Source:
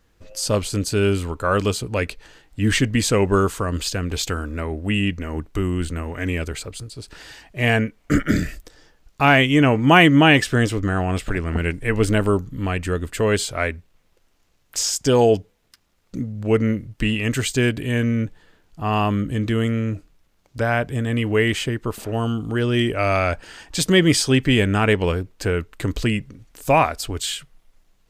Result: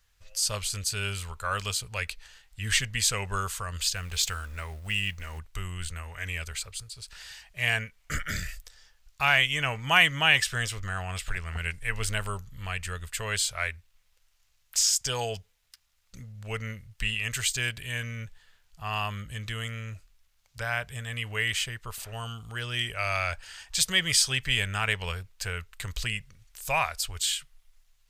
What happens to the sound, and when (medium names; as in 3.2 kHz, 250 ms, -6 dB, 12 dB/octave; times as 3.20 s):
3.96–5.39 s: companding laws mixed up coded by mu
whole clip: amplifier tone stack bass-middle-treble 10-0-10